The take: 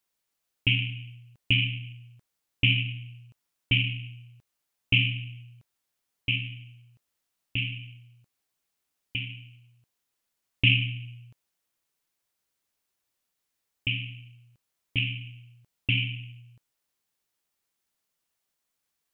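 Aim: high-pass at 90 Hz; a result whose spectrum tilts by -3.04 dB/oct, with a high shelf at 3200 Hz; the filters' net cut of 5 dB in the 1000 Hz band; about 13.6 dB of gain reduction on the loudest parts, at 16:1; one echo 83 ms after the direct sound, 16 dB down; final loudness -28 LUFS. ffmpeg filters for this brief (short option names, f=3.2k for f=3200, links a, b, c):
-af "highpass=90,equalizer=f=1k:t=o:g=-6.5,highshelf=f=3.2k:g=-5.5,acompressor=threshold=-32dB:ratio=16,aecho=1:1:83:0.158,volume=11.5dB"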